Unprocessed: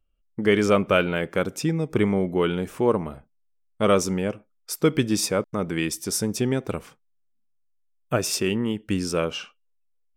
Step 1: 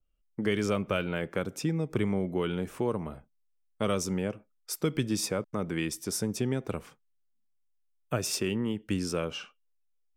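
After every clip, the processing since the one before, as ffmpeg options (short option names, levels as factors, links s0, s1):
-filter_complex "[0:a]acrossover=split=170|3000[s0][s1][s2];[s1]acompressor=threshold=0.0631:ratio=3[s3];[s0][s3][s2]amix=inputs=3:normalize=0,adynamicequalizer=threshold=0.00891:dfrequency=2400:dqfactor=0.7:tfrequency=2400:tqfactor=0.7:attack=5:release=100:ratio=0.375:range=2:mode=cutabove:tftype=highshelf,volume=0.631"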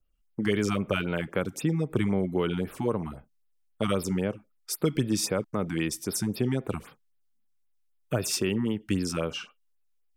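-af "afftfilt=real='re*(1-between(b*sr/1024,450*pow(7800/450,0.5+0.5*sin(2*PI*3.8*pts/sr))/1.41,450*pow(7800/450,0.5+0.5*sin(2*PI*3.8*pts/sr))*1.41))':imag='im*(1-between(b*sr/1024,450*pow(7800/450,0.5+0.5*sin(2*PI*3.8*pts/sr))/1.41,450*pow(7800/450,0.5+0.5*sin(2*PI*3.8*pts/sr))*1.41))':win_size=1024:overlap=0.75,volume=1.41"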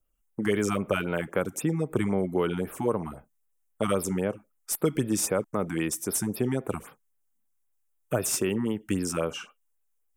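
-filter_complex "[0:a]aexciter=amount=6.4:drive=6.8:freq=6400,asplit=2[s0][s1];[s1]highpass=f=720:p=1,volume=2.51,asoftclip=type=tanh:threshold=0.708[s2];[s0][s2]amix=inputs=2:normalize=0,lowpass=f=1000:p=1,volume=0.501,volume=1.33"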